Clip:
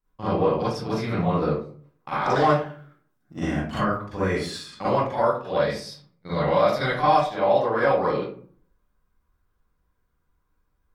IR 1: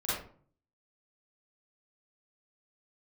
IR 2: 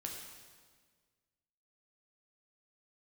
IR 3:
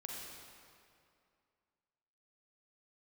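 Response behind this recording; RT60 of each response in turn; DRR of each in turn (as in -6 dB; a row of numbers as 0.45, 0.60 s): 1; 0.50, 1.6, 2.4 s; -11.5, 0.0, -2.5 dB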